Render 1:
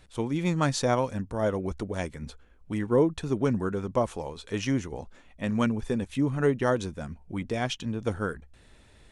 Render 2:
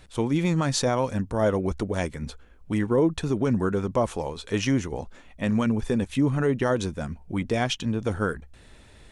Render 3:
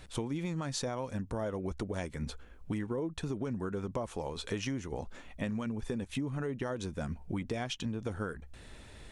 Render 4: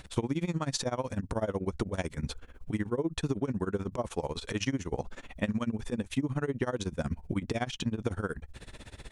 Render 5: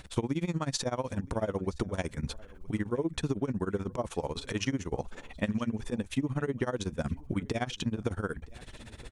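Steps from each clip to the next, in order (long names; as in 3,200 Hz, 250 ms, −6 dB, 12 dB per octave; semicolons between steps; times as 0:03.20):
brickwall limiter −18.5 dBFS, peak gain reduction 8.5 dB; level +5 dB
downward compressor 10 to 1, threshold −32 dBFS, peak gain reduction 15 dB
amplitude tremolo 16 Hz, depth 92%; level +7.5 dB
single-tap delay 968 ms −23.5 dB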